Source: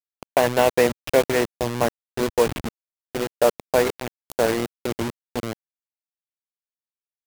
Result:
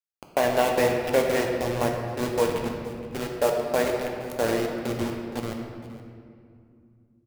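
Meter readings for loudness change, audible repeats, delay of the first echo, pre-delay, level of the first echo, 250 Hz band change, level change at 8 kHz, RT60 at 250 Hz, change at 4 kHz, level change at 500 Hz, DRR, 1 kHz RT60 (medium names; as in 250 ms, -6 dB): -3.5 dB, 1, 469 ms, 4 ms, -17.0 dB, -1.5 dB, -4.5 dB, 3.6 s, -3.5 dB, -3.0 dB, 1.0 dB, 2.2 s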